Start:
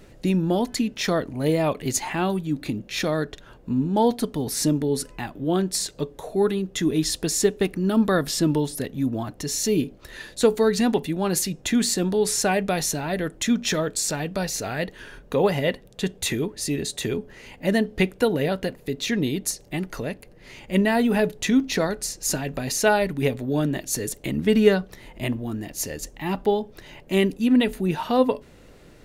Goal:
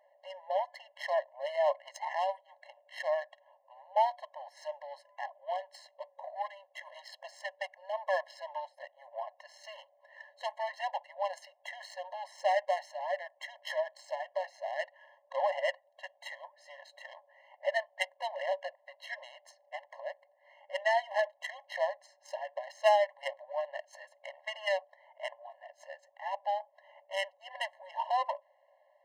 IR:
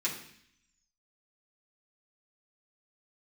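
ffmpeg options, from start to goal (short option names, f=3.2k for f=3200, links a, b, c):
-af "adynamicsmooth=sensitivity=1:basefreq=970,asubboost=boost=5:cutoff=120,afftfilt=real='re*eq(mod(floor(b*sr/1024/550),2),1)':imag='im*eq(mod(floor(b*sr/1024/550),2),1)':win_size=1024:overlap=0.75,volume=-1.5dB"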